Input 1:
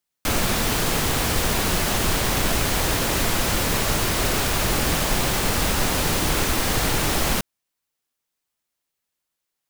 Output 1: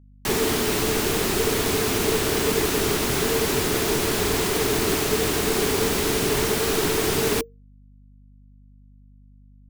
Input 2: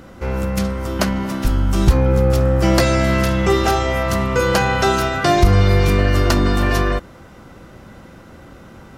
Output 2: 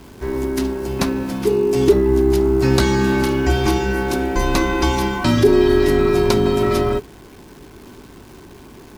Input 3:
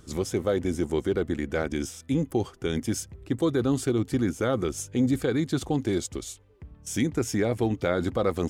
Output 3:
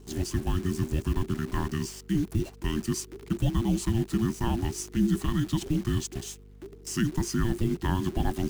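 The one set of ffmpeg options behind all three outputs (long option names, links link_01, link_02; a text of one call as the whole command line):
ffmpeg -i in.wav -af "acrusher=bits=8:dc=4:mix=0:aa=0.000001,afreqshift=-460,aeval=exprs='val(0)+0.00398*(sin(2*PI*50*n/s)+sin(2*PI*2*50*n/s)/2+sin(2*PI*3*50*n/s)/3+sin(2*PI*4*50*n/s)/4+sin(2*PI*5*50*n/s)/5)':channel_layout=same,volume=-1dB" out.wav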